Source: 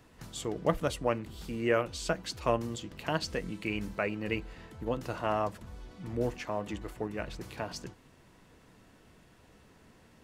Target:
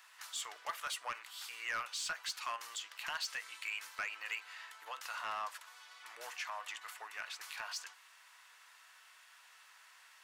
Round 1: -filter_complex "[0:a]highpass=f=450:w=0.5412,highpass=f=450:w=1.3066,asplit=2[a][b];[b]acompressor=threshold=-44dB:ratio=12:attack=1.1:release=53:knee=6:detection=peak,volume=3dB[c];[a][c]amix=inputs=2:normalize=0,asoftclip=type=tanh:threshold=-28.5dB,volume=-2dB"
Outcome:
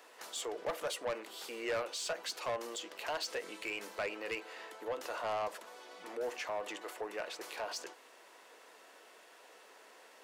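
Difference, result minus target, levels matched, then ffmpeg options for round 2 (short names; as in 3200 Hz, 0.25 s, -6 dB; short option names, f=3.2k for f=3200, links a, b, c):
500 Hz band +16.0 dB
-filter_complex "[0:a]highpass=f=1.1k:w=0.5412,highpass=f=1.1k:w=1.3066,asplit=2[a][b];[b]acompressor=threshold=-44dB:ratio=12:attack=1.1:release=53:knee=6:detection=peak,volume=3dB[c];[a][c]amix=inputs=2:normalize=0,asoftclip=type=tanh:threshold=-28.5dB,volume=-2dB"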